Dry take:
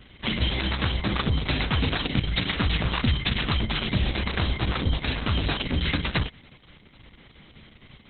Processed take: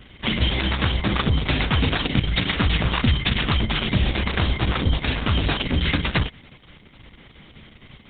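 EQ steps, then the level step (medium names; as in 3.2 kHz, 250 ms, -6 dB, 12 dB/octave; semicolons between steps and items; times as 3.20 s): band-stop 4 kHz, Q 11; +4.0 dB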